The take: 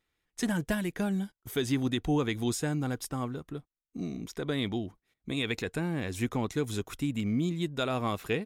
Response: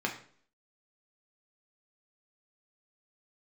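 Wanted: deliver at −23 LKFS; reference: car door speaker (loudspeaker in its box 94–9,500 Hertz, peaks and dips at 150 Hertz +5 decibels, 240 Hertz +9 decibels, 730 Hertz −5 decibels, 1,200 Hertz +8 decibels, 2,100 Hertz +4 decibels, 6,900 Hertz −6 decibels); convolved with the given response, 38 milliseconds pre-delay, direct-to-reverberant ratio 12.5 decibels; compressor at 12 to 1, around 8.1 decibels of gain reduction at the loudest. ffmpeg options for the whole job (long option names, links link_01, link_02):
-filter_complex "[0:a]acompressor=threshold=-32dB:ratio=12,asplit=2[link_01][link_02];[1:a]atrim=start_sample=2205,adelay=38[link_03];[link_02][link_03]afir=irnorm=-1:irlink=0,volume=-19dB[link_04];[link_01][link_04]amix=inputs=2:normalize=0,highpass=94,equalizer=frequency=150:width_type=q:width=4:gain=5,equalizer=frequency=240:width_type=q:width=4:gain=9,equalizer=frequency=730:width_type=q:width=4:gain=-5,equalizer=frequency=1200:width_type=q:width=4:gain=8,equalizer=frequency=2100:width_type=q:width=4:gain=4,equalizer=frequency=6900:width_type=q:width=4:gain=-6,lowpass=frequency=9500:width=0.5412,lowpass=frequency=9500:width=1.3066,volume=11dB"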